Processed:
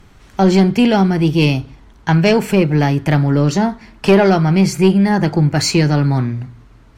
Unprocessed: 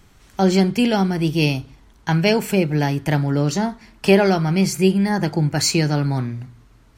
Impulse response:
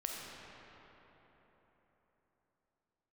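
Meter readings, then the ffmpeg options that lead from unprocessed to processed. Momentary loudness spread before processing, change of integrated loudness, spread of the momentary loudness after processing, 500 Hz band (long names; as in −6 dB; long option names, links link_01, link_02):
8 LU, +5.0 dB, 9 LU, +4.5 dB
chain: -af "aemphasis=mode=reproduction:type=cd,acontrast=88,volume=-1dB"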